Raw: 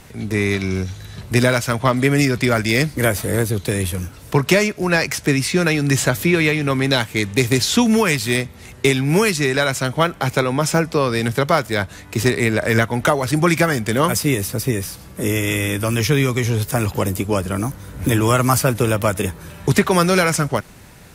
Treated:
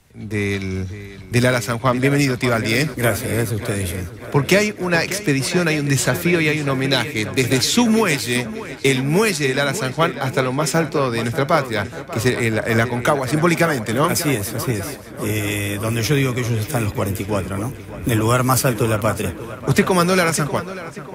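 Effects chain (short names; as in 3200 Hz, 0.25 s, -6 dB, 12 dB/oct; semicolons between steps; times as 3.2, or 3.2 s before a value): tape echo 0.591 s, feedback 76%, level -10 dB, low-pass 3900 Hz; three-band expander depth 40%; gain -1 dB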